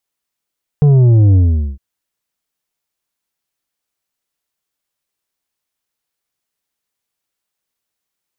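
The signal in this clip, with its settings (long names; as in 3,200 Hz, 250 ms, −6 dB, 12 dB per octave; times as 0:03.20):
bass drop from 150 Hz, over 0.96 s, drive 7 dB, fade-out 0.43 s, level −6.5 dB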